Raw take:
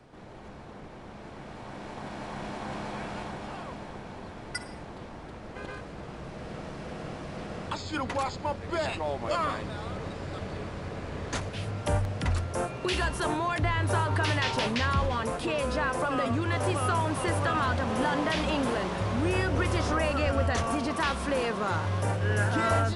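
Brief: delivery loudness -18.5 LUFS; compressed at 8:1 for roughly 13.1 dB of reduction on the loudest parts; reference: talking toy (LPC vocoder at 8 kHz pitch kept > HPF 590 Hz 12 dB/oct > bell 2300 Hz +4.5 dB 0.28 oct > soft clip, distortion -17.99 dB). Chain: compressor 8:1, threshold -36 dBFS; LPC vocoder at 8 kHz pitch kept; HPF 590 Hz 12 dB/oct; bell 2300 Hz +4.5 dB 0.28 oct; soft clip -33 dBFS; gain +26.5 dB

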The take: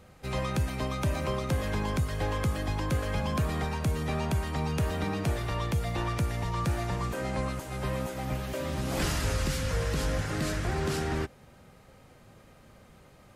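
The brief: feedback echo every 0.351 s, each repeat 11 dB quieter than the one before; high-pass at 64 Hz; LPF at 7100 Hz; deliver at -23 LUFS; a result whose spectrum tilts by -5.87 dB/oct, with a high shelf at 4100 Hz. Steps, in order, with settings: HPF 64 Hz; LPF 7100 Hz; high shelf 4100 Hz -5.5 dB; feedback echo 0.351 s, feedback 28%, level -11 dB; gain +8.5 dB

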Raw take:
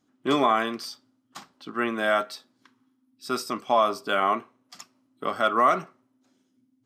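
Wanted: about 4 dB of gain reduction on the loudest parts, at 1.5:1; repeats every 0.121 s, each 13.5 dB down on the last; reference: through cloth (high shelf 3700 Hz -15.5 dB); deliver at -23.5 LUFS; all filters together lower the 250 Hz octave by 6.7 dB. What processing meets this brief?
bell 250 Hz -8.5 dB; compressor 1.5:1, threshold -27 dBFS; high shelf 3700 Hz -15.5 dB; feedback echo 0.121 s, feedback 21%, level -13.5 dB; gain +7 dB

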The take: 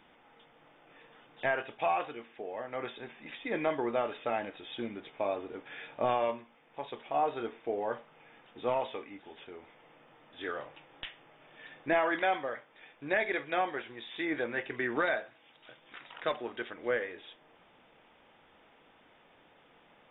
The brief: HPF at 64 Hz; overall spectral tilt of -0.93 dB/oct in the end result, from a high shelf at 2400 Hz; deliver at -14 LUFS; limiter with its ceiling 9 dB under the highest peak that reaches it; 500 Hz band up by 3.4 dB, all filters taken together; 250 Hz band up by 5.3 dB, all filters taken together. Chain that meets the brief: HPF 64 Hz; bell 250 Hz +6 dB; bell 500 Hz +3.5 dB; high shelf 2400 Hz -8.5 dB; gain +22 dB; limiter -1.5 dBFS

